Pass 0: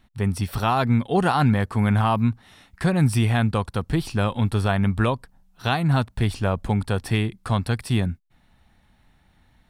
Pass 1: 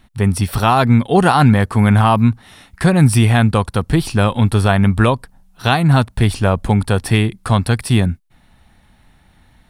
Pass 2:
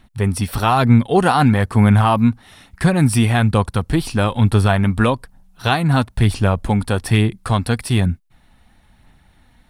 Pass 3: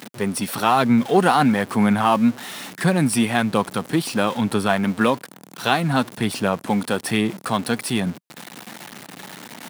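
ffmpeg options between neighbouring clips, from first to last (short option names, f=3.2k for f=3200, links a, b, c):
-af "equalizer=f=9.9k:t=o:w=0.36:g=5,volume=8dB"
-af "aphaser=in_gain=1:out_gain=1:delay=4.2:decay=0.28:speed=1.1:type=sinusoidal,volume=-2.5dB"
-af "aeval=exprs='val(0)+0.5*0.0447*sgn(val(0))':c=same,highpass=f=170:w=0.5412,highpass=f=170:w=1.3066,volume=-2dB"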